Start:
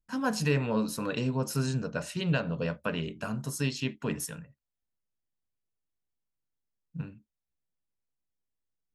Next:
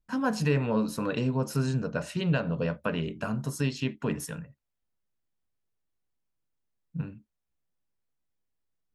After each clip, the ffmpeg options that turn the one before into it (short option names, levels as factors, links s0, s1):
-filter_complex "[0:a]highshelf=f=3000:g=-7.5,asplit=2[s0][s1];[s1]acompressor=threshold=0.0178:ratio=6,volume=0.75[s2];[s0][s2]amix=inputs=2:normalize=0"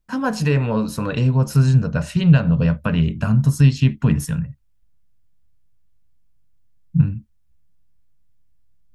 -af "asubboost=boost=11:cutoff=130,volume=2.11"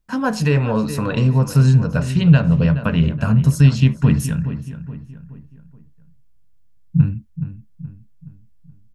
-filter_complex "[0:a]asplit=2[s0][s1];[s1]adelay=423,lowpass=f=2400:p=1,volume=0.266,asplit=2[s2][s3];[s3]adelay=423,lowpass=f=2400:p=1,volume=0.44,asplit=2[s4][s5];[s5]adelay=423,lowpass=f=2400:p=1,volume=0.44,asplit=2[s6][s7];[s7]adelay=423,lowpass=f=2400:p=1,volume=0.44[s8];[s0][s2][s4][s6][s8]amix=inputs=5:normalize=0,volume=1.19"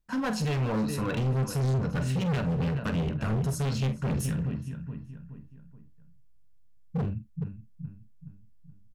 -filter_complex "[0:a]asoftclip=type=hard:threshold=0.112,asplit=2[s0][s1];[s1]adelay=46,volume=0.237[s2];[s0][s2]amix=inputs=2:normalize=0,volume=0.473"